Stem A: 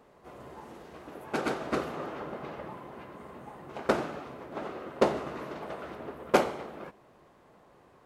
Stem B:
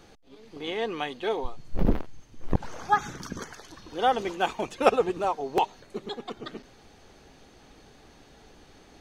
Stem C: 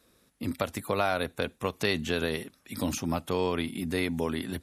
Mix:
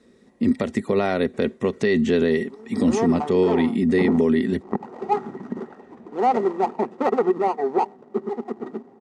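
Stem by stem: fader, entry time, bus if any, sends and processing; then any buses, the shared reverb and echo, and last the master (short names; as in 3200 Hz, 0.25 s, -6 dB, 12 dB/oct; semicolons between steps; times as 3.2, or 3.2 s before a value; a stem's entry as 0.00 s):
-13.5 dB, 0.00 s, no send, cascading flanger falling 0.37 Hz; auto duck -13 dB, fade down 1.75 s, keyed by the third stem
-3.5 dB, 2.20 s, no send, median filter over 41 samples; HPF 190 Hz 12 dB/oct; band shelf 1000 Hz +14 dB 1.1 oct
0.0 dB, 0.00 s, no send, dry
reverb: off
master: steep low-pass 8700 Hz 36 dB/oct; small resonant body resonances 230/380/1900 Hz, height 17 dB, ringing for 40 ms; limiter -10 dBFS, peak gain reduction 10 dB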